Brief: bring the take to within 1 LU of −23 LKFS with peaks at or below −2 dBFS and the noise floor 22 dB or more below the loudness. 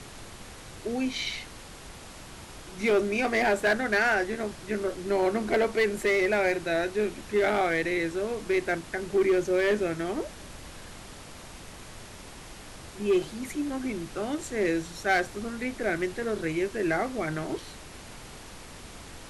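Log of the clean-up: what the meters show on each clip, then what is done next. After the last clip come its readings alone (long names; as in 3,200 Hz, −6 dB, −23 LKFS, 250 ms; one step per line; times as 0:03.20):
share of clipped samples 0.8%; peaks flattened at −18.0 dBFS; background noise floor −45 dBFS; target noise floor −50 dBFS; integrated loudness −28.0 LKFS; sample peak −18.0 dBFS; target loudness −23.0 LKFS
→ clipped peaks rebuilt −18 dBFS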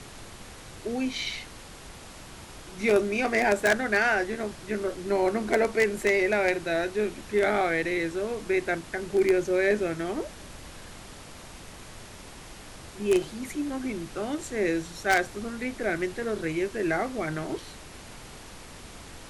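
share of clipped samples 0.0%; background noise floor −45 dBFS; target noise floor −49 dBFS
→ noise reduction from a noise print 6 dB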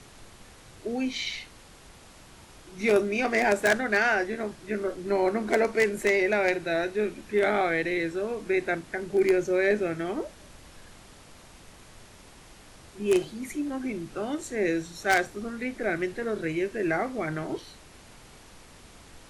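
background noise floor −51 dBFS; integrated loudness −27.0 LKFS; sample peak −9.0 dBFS; target loudness −23.0 LKFS
→ level +4 dB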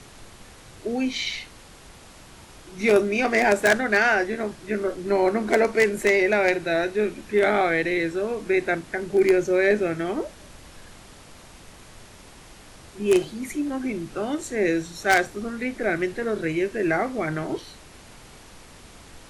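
integrated loudness −23.0 LKFS; sample peak −5.0 dBFS; background noise floor −47 dBFS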